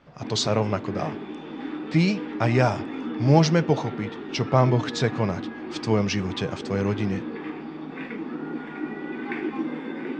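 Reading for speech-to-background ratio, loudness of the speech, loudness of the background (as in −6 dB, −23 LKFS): 9.5 dB, −24.5 LKFS, −34.0 LKFS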